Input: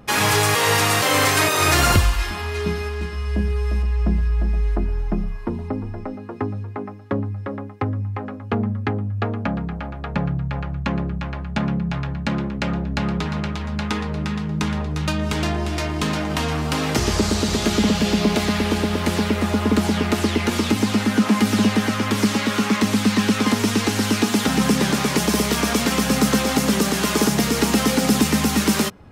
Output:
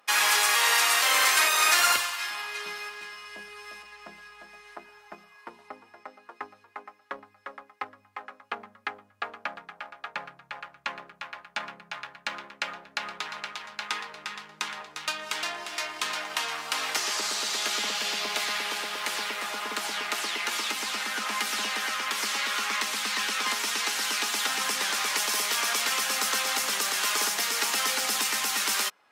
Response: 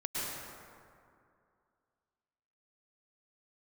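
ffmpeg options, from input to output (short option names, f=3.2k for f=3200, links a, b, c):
-filter_complex "[0:a]highpass=1.1k,asplit=2[a][b];[b]aeval=exprs='sgn(val(0))*max(abs(val(0))-0.00596,0)':c=same,volume=-6dB[c];[a][c]amix=inputs=2:normalize=0,volume=-5dB" -ar 44100 -c:a libvorbis -b:a 128k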